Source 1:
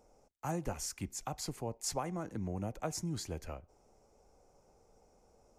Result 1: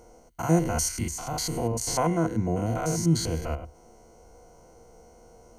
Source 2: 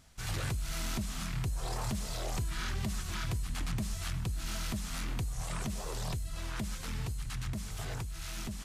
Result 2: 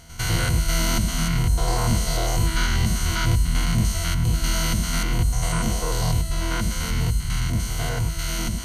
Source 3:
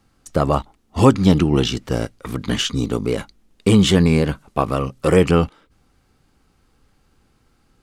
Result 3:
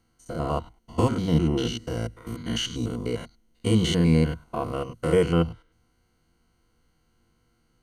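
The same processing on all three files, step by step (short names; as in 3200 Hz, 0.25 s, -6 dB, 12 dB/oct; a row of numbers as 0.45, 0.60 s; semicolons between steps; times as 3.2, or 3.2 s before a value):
stepped spectrum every 0.1 s; ripple EQ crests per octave 1.9, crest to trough 11 dB; normalise peaks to -9 dBFS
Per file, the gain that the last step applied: +13.5, +14.0, -7.0 dB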